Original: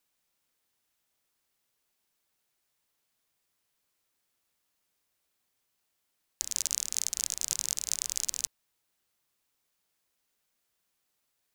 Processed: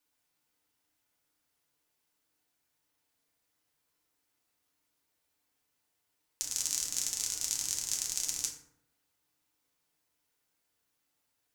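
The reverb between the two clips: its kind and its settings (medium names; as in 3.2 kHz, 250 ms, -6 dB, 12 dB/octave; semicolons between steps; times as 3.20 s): FDN reverb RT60 0.76 s, low-frequency decay 1.2×, high-frequency decay 0.5×, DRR -2 dB; trim -4 dB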